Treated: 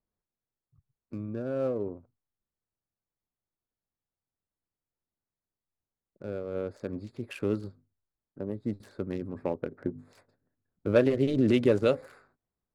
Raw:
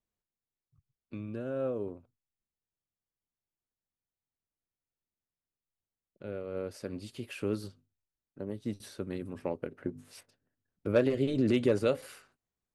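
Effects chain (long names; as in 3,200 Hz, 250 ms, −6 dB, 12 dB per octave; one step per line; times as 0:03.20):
adaptive Wiener filter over 15 samples
level +3.5 dB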